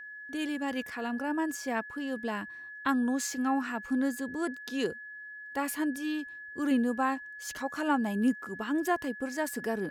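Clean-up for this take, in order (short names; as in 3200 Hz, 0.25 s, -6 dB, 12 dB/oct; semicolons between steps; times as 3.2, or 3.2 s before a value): notch 1700 Hz, Q 30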